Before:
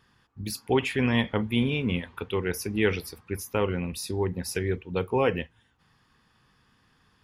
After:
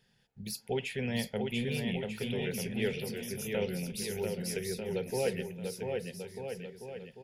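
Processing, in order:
in parallel at −1 dB: downward compressor, threshold −33 dBFS, peak gain reduction 14 dB
on the sum: phaser with its sweep stopped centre 300 Hz, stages 6
bouncing-ball delay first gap 690 ms, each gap 0.8×, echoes 5
level −8 dB

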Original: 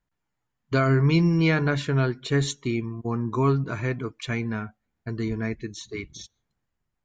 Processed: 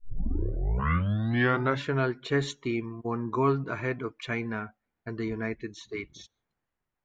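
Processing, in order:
turntable start at the beginning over 1.85 s
bass and treble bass −8 dB, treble −11 dB

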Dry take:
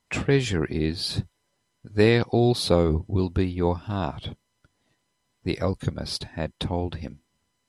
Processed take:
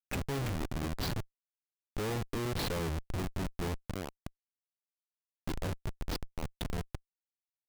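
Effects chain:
comparator with hysteresis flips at −25 dBFS
level −7.5 dB

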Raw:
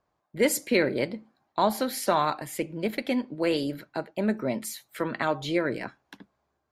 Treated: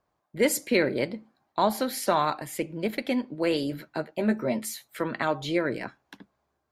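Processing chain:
0:03.70–0:04.88: double-tracking delay 13 ms −5.5 dB

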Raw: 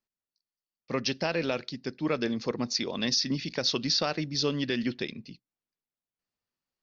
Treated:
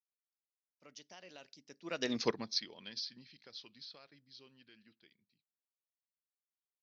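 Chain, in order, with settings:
source passing by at 0:02.20, 31 m/s, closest 3.1 metres
spectral tilt +2 dB per octave
expander for the loud parts 1.5 to 1, over −45 dBFS
level +3 dB

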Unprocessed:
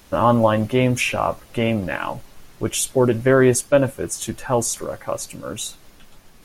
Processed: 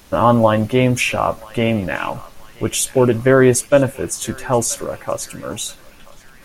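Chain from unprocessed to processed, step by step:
feedback echo with a band-pass in the loop 980 ms, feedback 59%, band-pass 2,200 Hz, level −18 dB
level +3 dB

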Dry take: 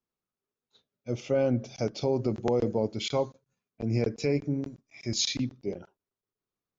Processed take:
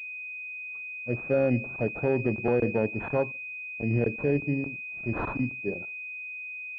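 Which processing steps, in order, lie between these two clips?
switching amplifier with a slow clock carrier 2,500 Hz
level +1.5 dB

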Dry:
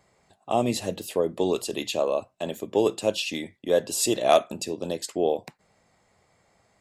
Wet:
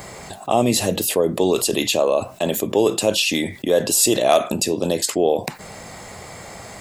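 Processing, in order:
high-shelf EQ 9,700 Hz +10 dB
envelope flattener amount 50%
level +2 dB

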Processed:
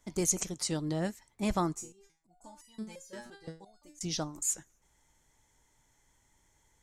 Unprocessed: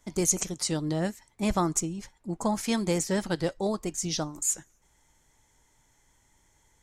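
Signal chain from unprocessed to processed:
0:01.75–0:04.01: step-sequenced resonator 5.8 Hz 120–980 Hz
level −4 dB

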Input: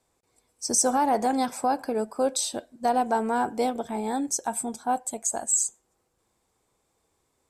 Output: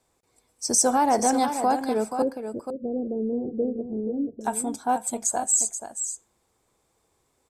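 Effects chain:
0:02.22–0:04.41: Butterworth low-pass 510 Hz 48 dB per octave
single-tap delay 481 ms −8.5 dB
level +2 dB

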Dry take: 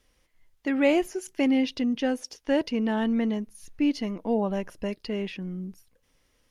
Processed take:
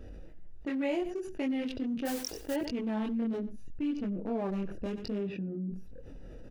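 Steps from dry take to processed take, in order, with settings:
adaptive Wiener filter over 41 samples
0:02.05–0:02.54: noise that follows the level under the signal 12 dB
0:03.95–0:04.40: high-shelf EQ 7,200 Hz −9.5 dB
0:05.19–0:05.69: high-pass filter 52 Hz → 190 Hz 24 dB per octave
multi-voice chorus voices 2, 0.75 Hz, delay 23 ms, depth 3.2 ms
single-tap delay 93 ms −22 dB
envelope flattener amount 70%
level −8.5 dB

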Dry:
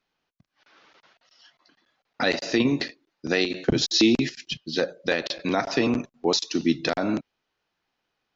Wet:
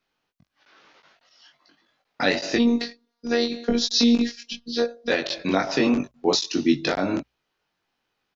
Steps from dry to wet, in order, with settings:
mains-hum notches 60/120 Hz
0:02.56–0:05.10: phases set to zero 236 Hz
double-tracking delay 21 ms −3 dB

